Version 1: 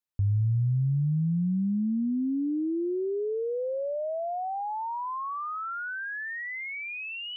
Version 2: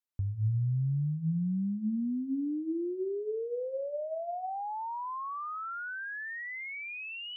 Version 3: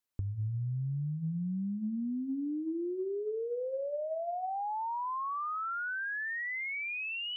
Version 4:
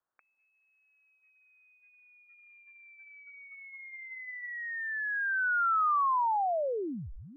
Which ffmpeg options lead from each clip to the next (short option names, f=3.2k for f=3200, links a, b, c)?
-af "bandreject=f=51.97:t=h:w=4,bandreject=f=103.94:t=h:w=4,bandreject=f=155.91:t=h:w=4,bandreject=f=207.88:t=h:w=4,bandreject=f=259.85:t=h:w=4,bandreject=f=311.82:t=h:w=4,bandreject=f=363.79:t=h:w=4,bandreject=f=415.76:t=h:w=4,bandreject=f=467.73:t=h:w=4,bandreject=f=519.7:t=h:w=4,bandreject=f=571.67:t=h:w=4,bandreject=f=623.64:t=h:w=4,bandreject=f=675.61:t=h:w=4,bandreject=f=727.58:t=h:w=4,volume=-4dB"
-af "acompressor=threshold=-37dB:ratio=6,volume=4dB"
-af "highpass=f=1.4k:t=q:w=1.9,lowpass=f=2.3k:t=q:w=0.5098,lowpass=f=2.3k:t=q:w=0.6013,lowpass=f=2.3k:t=q:w=0.9,lowpass=f=2.3k:t=q:w=2.563,afreqshift=-2700,volume=3.5dB"